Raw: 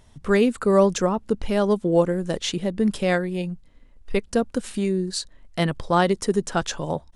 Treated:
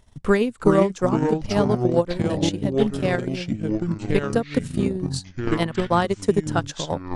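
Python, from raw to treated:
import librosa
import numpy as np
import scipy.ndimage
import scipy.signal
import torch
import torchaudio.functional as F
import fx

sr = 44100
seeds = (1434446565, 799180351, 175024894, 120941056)

y = fx.echo_pitch(x, sr, ms=291, semitones=-4, count=3, db_per_echo=-3.0)
y = fx.transient(y, sr, attack_db=9, sustain_db=-9)
y = y * 10.0 ** (-4.0 / 20.0)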